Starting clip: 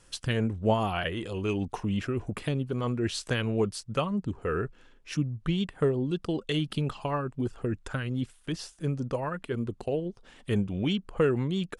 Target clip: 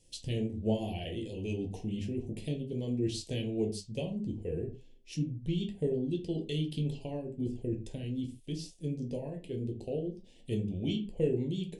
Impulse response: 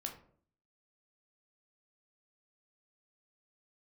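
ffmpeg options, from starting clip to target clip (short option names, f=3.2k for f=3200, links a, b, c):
-filter_complex "[0:a]asuperstop=centerf=1300:order=4:qfactor=0.56[a];[1:a]atrim=start_sample=2205,afade=t=out:st=0.28:d=0.01,atrim=end_sample=12789,asetrate=61740,aresample=44100[b];[a][b]afir=irnorm=-1:irlink=0"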